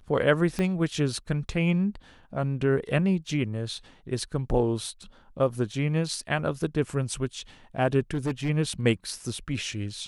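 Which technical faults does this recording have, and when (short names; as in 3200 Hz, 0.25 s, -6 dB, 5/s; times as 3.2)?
0.59 pop -16 dBFS
8.11–8.5 clipped -23 dBFS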